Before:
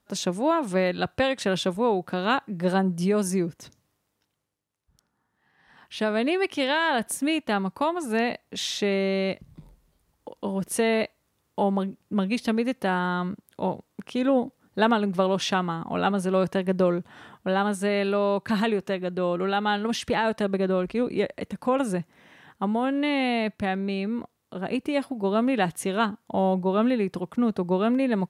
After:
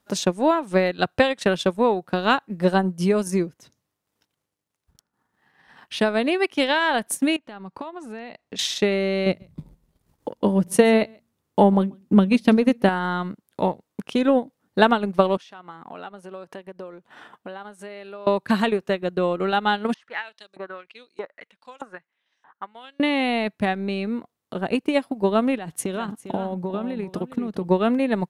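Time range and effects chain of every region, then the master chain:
7.36–8.59 compressor 5:1, threshold -36 dBFS + air absorption 63 m
9.26–12.89 low shelf 390 Hz +8 dB + de-hum 57.53 Hz, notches 4 + echo 0.138 s -21.5 dB
15.37–18.27 compressor 4:1, threshold -37 dBFS + HPF 410 Hz 6 dB/oct + high shelf 3600 Hz -5.5 dB
19.94–23 bell 2500 Hz -3 dB 1.1 oct + LFO band-pass saw up 1.6 Hz 960–6600 Hz + mismatched tape noise reduction decoder only
25.56–27.68 low shelf 420 Hz +4 dB + compressor 20:1, threshold -26 dBFS + echo 0.4 s -9.5 dB
whole clip: low shelf 92 Hz -6.5 dB; transient shaper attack +5 dB, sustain -9 dB; gain +2.5 dB

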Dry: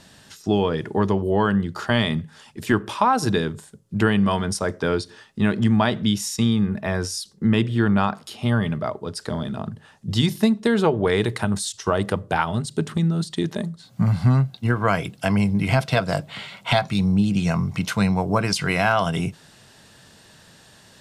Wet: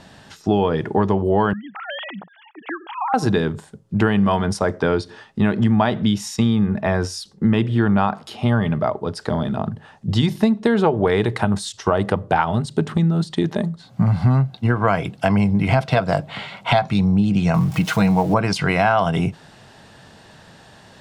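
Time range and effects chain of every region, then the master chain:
1.53–3.14 sine-wave speech + HPF 1100 Hz 6 dB/oct + compressor 2:1, threshold -35 dBFS
17.54–18.34 switching spikes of -26 dBFS + comb 6.3 ms, depth 55%
whole clip: LPF 2700 Hz 6 dB/oct; bell 780 Hz +4.5 dB 0.59 oct; compressor 2:1, threshold -21 dBFS; gain +5.5 dB

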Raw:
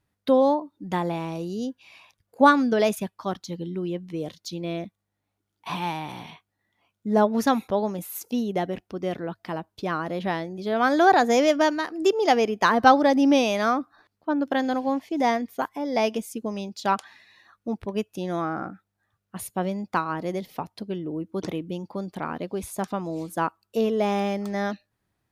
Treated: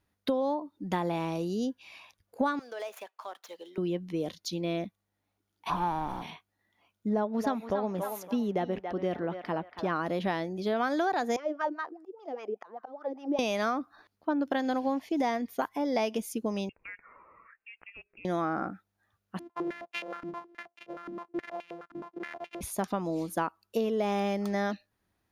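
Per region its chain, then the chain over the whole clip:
2.59–3.78 median filter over 9 samples + HPF 510 Hz 24 dB/oct + compressor 3:1, threshold -39 dBFS
5.69–6.21 resonant high shelf 1800 Hz -9 dB, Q 3 + added noise brown -44 dBFS
7.09–9.96 high shelf 3900 Hz -10 dB + narrowing echo 0.281 s, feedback 40%, band-pass 1300 Hz, level -7 dB
11.36–13.39 high shelf 4900 Hz +7.5 dB + auto swell 0.523 s + wah 5 Hz 350–1400 Hz, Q 4.5
16.69–18.25 HPF 650 Hz + compressor 2.5:1, threshold -50 dBFS + inverted band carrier 3000 Hz
19.39–22.61 sample sorter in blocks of 128 samples + stepped band-pass 9.5 Hz 270–2600 Hz
whole clip: compressor 10:1, threshold -25 dBFS; bell 130 Hz -9 dB 0.38 oct; notch 7900 Hz, Q 7.5

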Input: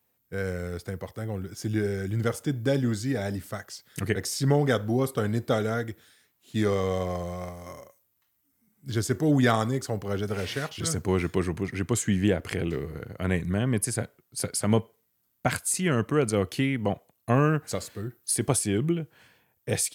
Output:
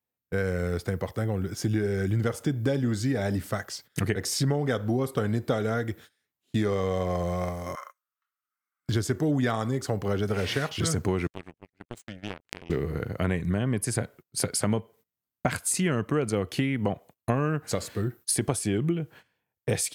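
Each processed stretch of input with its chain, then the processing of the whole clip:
7.75–8.89 resonant high-pass 1300 Hz, resonance Q 7.6 + high shelf 6000 Hz -5 dB
11.27–12.7 bell 2600 Hz +5 dB 0.32 oct + compressor 2:1, threshold -27 dBFS + power-law curve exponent 3
whole clip: gate -50 dBFS, range -21 dB; high shelf 4600 Hz -5 dB; compressor 5:1, threshold -30 dBFS; gain +7 dB

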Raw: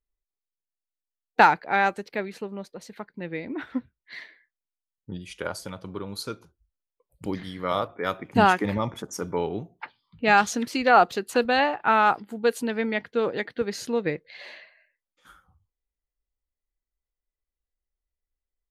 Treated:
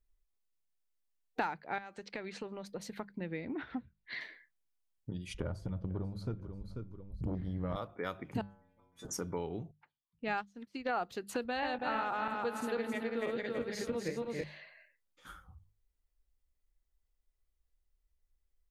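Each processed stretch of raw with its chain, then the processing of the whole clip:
1.78–2.66 LPF 7700 Hz 24 dB/oct + compressor 8:1, threshold -30 dBFS + low shelf 430 Hz -8 dB
3.41–4.21 LPF 4700 Hz 24 dB/oct + core saturation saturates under 460 Hz
5.34–7.76 tilt -4.5 dB/oct + feedback echo 0.49 s, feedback 25%, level -16.5 dB + core saturation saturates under 340 Hz
8.41–9.05 flipped gate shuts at -16 dBFS, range -31 dB + metallic resonator 86 Hz, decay 0.82 s, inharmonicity 0.008 + sustainer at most 93 dB/s
9.71–10.89 high shelf 6300 Hz -6.5 dB + upward expander 2.5:1, over -36 dBFS
11.46–14.44 regenerating reverse delay 0.164 s, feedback 60%, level -1 dB + doubler 21 ms -14 dB
whole clip: low shelf 130 Hz +10.5 dB; compressor 3:1, threshold -40 dBFS; notches 50/100/150/200 Hz; gain +1 dB

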